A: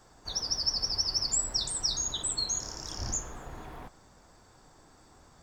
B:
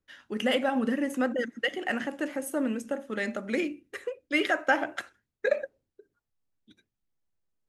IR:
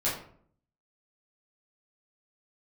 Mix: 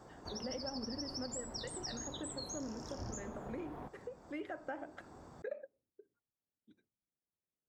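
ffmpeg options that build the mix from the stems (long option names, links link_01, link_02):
-filter_complex "[0:a]bass=frequency=250:gain=1,treble=frequency=4000:gain=3,volume=-1dB[link_01];[1:a]volume=-13dB[link_02];[link_01][link_02]amix=inputs=2:normalize=0,highpass=frequency=190:poles=1,tiltshelf=frequency=1500:gain=9.5,acompressor=threshold=-47dB:ratio=2"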